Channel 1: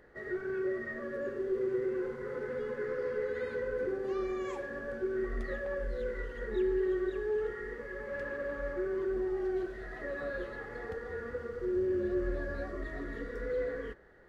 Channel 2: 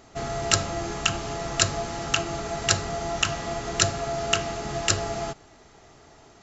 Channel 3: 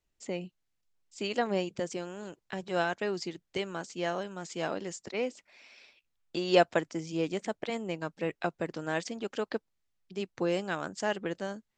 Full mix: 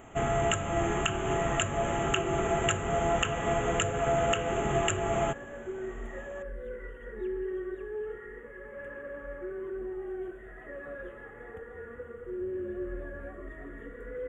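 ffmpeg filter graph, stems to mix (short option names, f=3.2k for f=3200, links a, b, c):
-filter_complex "[0:a]adelay=650,volume=-4dB[a];[1:a]volume=2.5dB,alimiter=limit=-11.5dB:level=0:latency=1:release=259,volume=0dB[b];[a][b]amix=inputs=2:normalize=0,asuperstop=centerf=4800:order=8:qfactor=1.3"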